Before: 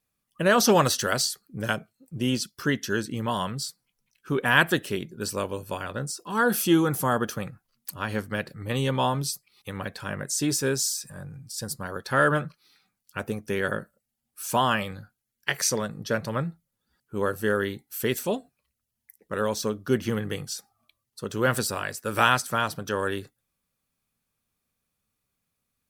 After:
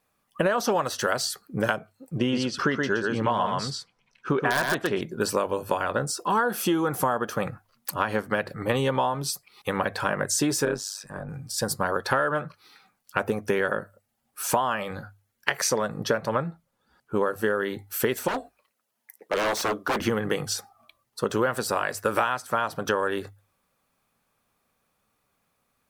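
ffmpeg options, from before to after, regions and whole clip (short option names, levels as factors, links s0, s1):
-filter_complex "[0:a]asettb=1/sr,asplit=3[s0][s1][s2];[s0]atrim=end=2.184[s3];[s1]atrim=start=2.18:end=5.01,asetpts=PTS-STARTPTS,afade=t=in:d=0.004:c=qsin,afade=t=out:st=2.826:d=0.004:c=qsin,lowpass=5400,aeval=exprs='(mod(3.16*val(0)+1,2)-1)/3.16':c=same,aecho=1:1:122:0.631,atrim=end_sample=124803[s4];[s2]atrim=start=5.006[s5];[s3][s4]acrossfade=d=0.004:c1=hsin:c2=qsin[s6];[s6][s5]acrossfade=d=0.004:c1=qsin:c2=hsin,asettb=1/sr,asplit=3[s7][s8][s9];[s7]atrim=end=10.654[s10];[s8]atrim=start=10.65:end=11.29,asetpts=PTS-STARTPTS,afade=t=in:d=0.004:c=qsin,afade=t=out:st=0.636:d=0.004:c=qsin,lowpass=f=3000:p=1,tremolo=f=100:d=0.824[s11];[s9]atrim=start=11.286[s12];[s10][s11]acrossfade=d=0.004:c1=hsin:c2=qsin[s13];[s13][s12]acrossfade=d=0.004:c1=qsin:c2=hsin,asettb=1/sr,asplit=3[s14][s15][s16];[s14]atrim=end=16.284[s17];[s15]atrim=start=16.28:end=17.22,asetpts=PTS-STARTPTS,afade=t=in:d=0.004:c=qsin,afade=t=out:st=0.936:d=0.004:c=qsin,highshelf=f=10000:g=-6.5,bandreject=f=1900:w=26[s18];[s16]atrim=start=17.216[s19];[s17][s18]acrossfade=d=0.004:c1=hsin:c2=qsin[s20];[s20][s19]acrossfade=d=0.004:c1=qsin:c2=hsin,asettb=1/sr,asplit=3[s21][s22][s23];[s21]atrim=end=18.284[s24];[s22]atrim=start=18.28:end=20,asetpts=PTS-STARTPTS,afade=t=in:d=0.004:c=qsin,afade=t=out:st=1.716:d=0.004:c=qsin,highpass=260,aeval=exprs='0.0355*(abs(mod(val(0)/0.0355+3,4)-2)-1)':c=same[s25];[s23]atrim=start=19.996[s26];[s24][s25]acrossfade=d=0.004:c1=hsin:c2=qsin[s27];[s27][s26]acrossfade=d=0.004:c1=qsin:c2=hsin,equalizer=f=830:t=o:w=2.7:g=11.5,bandreject=f=50:t=h:w=6,bandreject=f=100:t=h:w=6,acompressor=threshold=0.0631:ratio=16,volume=1.5"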